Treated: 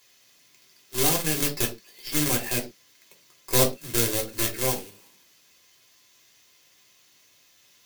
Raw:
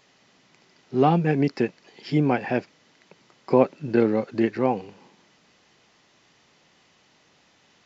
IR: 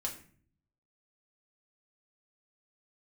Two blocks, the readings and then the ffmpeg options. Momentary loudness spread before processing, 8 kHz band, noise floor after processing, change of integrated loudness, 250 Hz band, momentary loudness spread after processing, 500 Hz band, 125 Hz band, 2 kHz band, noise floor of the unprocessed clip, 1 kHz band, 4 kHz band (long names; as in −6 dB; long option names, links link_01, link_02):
8 LU, can't be measured, −60 dBFS, −1.0 dB, −9.0 dB, 9 LU, −7.0 dB, −5.0 dB, +1.0 dB, −61 dBFS, −8.0 dB, +13.5 dB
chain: -filter_complex "[0:a]acrusher=bits=2:mode=log:mix=0:aa=0.000001,crystalizer=i=8:c=0,aeval=exprs='3.76*(cos(1*acos(clip(val(0)/3.76,-1,1)))-cos(1*PI/2))+0.668*(cos(8*acos(clip(val(0)/3.76,-1,1)))-cos(8*PI/2))':channel_layout=same[link_01];[1:a]atrim=start_sample=2205,afade=type=out:start_time=0.31:duration=0.01,atrim=end_sample=14112,asetrate=88200,aresample=44100[link_02];[link_01][link_02]afir=irnorm=-1:irlink=0,volume=-6.5dB"